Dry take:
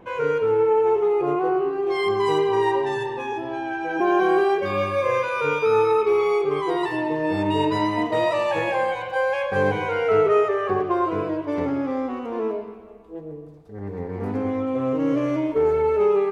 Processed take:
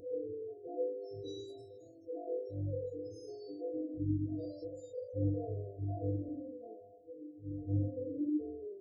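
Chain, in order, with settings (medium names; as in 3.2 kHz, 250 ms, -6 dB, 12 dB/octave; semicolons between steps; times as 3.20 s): feedback comb 100 Hz, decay 1.6 s, harmonics odd, mix 100%; spectral gate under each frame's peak -25 dB strong; peaking EQ 1.8 kHz -7 dB 0.91 oct; upward compressor, threshold -56 dBFS; fifteen-band graphic EQ 400 Hz +5 dB, 1.6 kHz +10 dB, 4 kHz -6 dB; plain phase-vocoder stretch 0.54×; brick-wall FIR band-stop 690–3700 Hz; trim +10 dB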